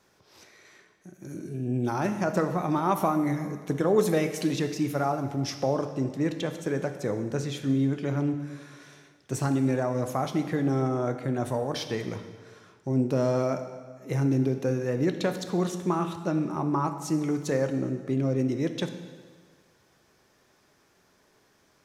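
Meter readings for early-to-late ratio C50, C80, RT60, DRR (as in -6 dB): 9.0 dB, 10.5 dB, 1.6 s, 7.0 dB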